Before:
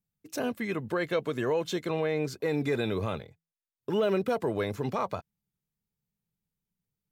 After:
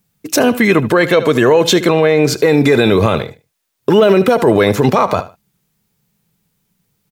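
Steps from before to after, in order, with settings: low shelf 78 Hz -10.5 dB; feedback echo 75 ms, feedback 20%, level -18 dB; maximiser +24.5 dB; gain -1 dB

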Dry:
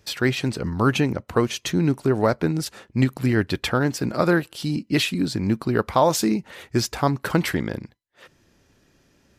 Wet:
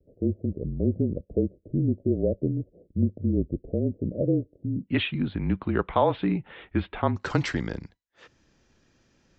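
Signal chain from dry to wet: steep low-pass 640 Hz 72 dB/oct, from 4.87 s 3600 Hz, from 7.15 s 7400 Hz; frequency shift -32 Hz; gain -4 dB

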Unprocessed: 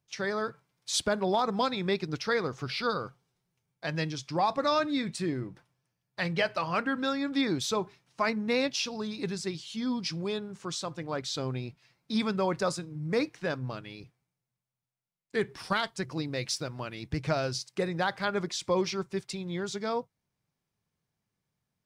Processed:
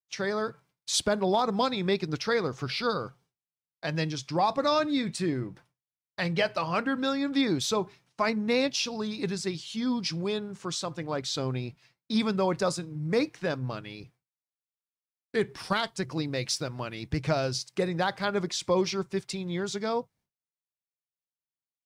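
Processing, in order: expander -57 dBFS; dynamic EQ 1600 Hz, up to -3 dB, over -39 dBFS, Q 1.1; gain +2.5 dB

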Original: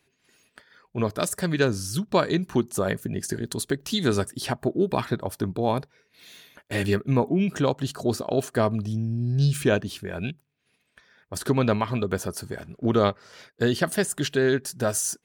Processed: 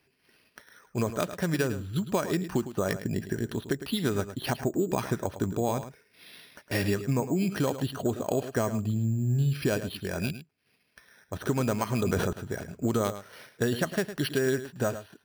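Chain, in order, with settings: bell 11000 Hz +5.5 dB 2 oct; compressor, threshold -23 dBFS, peak gain reduction 8.5 dB; on a send: echo 0.107 s -12 dB; on the sum: careless resampling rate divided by 6×, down filtered, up hold; 11.88–12.33 sustainer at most 26 dB/s

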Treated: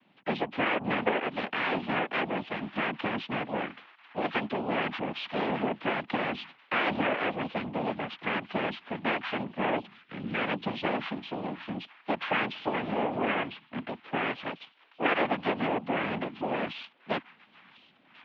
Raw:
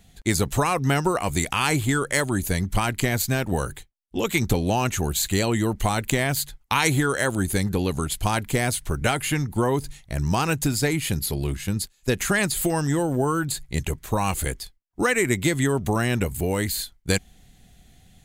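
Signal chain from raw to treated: on a send: thin delay 1.045 s, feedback 64%, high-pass 2500 Hz, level -17 dB; on the sum: noise vocoder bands 4; in parallel at -5 dB: hard clip -23 dBFS, distortion -8 dB; on the sum: mistuned SSB -63 Hz 280–3300 Hz; 9.94–10.4 spectral gain 570–1200 Hz -7 dB; 13.48–13.89 air absorption 160 m; gain -7 dB

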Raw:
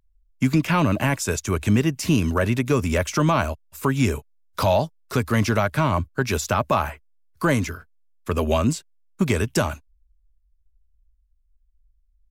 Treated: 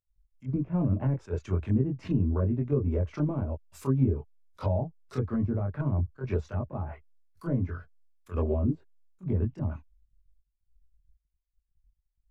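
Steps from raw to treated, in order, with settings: treble ducked by the level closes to 390 Hz, closed at -17 dBFS; chorus voices 4, 0.3 Hz, delay 22 ms, depth 1.5 ms; gate -58 dBFS, range -17 dB; attack slew limiter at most 350 dB/s; gain -2 dB

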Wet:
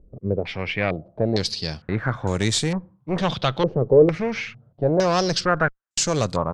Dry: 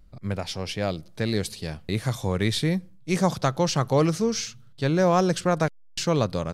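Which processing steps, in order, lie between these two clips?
one-sided clip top -27.5 dBFS, bottom -13 dBFS; stepped low-pass 2.2 Hz 450–7400 Hz; gain +2.5 dB

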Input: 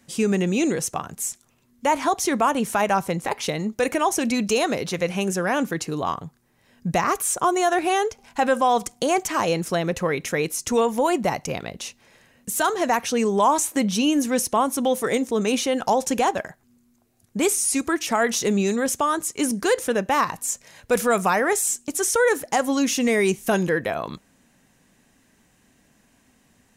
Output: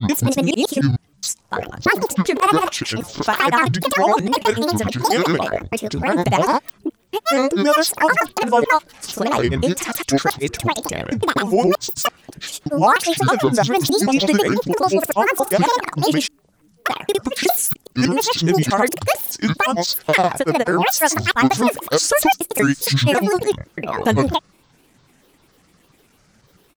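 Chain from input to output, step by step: slices in reverse order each 0.301 s, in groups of 3; grains, grains 20/s, pitch spread up and down by 12 st; gain +6 dB

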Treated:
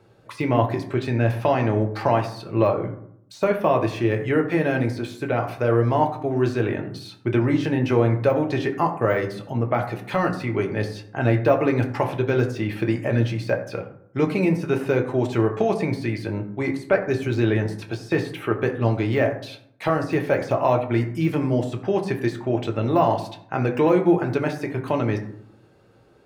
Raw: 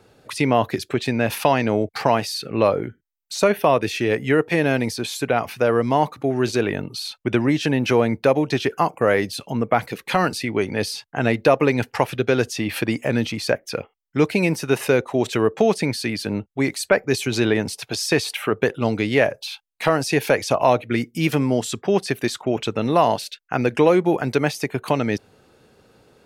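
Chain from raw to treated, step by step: de-esser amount 70%; high shelf 3100 Hz -7.5 dB; reverb RT60 0.70 s, pre-delay 4 ms, DRR 3 dB; gain -3.5 dB

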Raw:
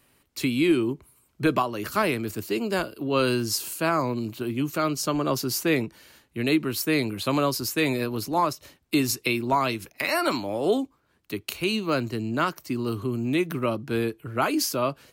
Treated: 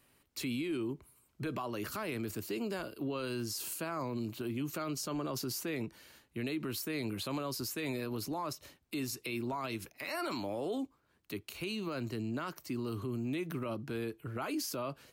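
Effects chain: limiter -23.5 dBFS, peak gain reduction 11.5 dB; gain -5.5 dB

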